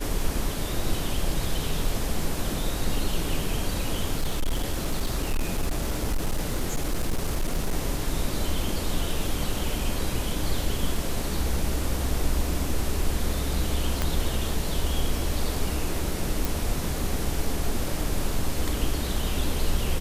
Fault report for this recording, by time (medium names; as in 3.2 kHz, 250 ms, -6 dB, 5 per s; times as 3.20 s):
4.17–7.75 s: clipped -20.5 dBFS
14.02 s: pop -10 dBFS
16.45 s: pop